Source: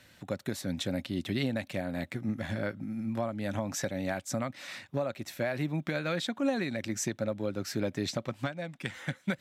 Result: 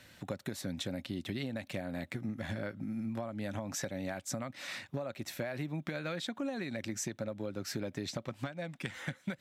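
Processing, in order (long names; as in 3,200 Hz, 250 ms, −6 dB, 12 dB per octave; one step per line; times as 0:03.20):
downward compressor, threshold −35 dBFS, peak gain reduction 10.5 dB
level +1 dB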